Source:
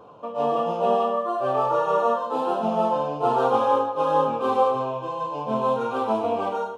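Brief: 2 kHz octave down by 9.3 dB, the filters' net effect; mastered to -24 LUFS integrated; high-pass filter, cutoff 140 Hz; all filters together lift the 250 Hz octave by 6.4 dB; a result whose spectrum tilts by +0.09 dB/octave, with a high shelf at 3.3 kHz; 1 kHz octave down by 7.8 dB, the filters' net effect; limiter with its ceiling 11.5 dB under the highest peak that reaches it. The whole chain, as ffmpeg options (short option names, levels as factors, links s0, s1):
-af "highpass=140,equalizer=f=250:t=o:g=8.5,equalizer=f=1000:t=o:g=-9,equalizer=f=2000:t=o:g=-8.5,highshelf=f=3300:g=-4,volume=2.24,alimiter=limit=0.158:level=0:latency=1"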